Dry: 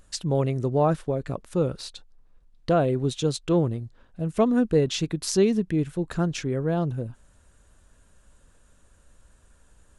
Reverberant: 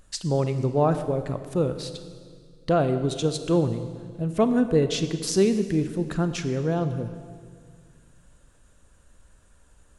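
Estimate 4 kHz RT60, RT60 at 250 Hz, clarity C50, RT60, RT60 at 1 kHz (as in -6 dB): 1.7 s, 2.3 s, 10.5 dB, 2.0 s, 1.8 s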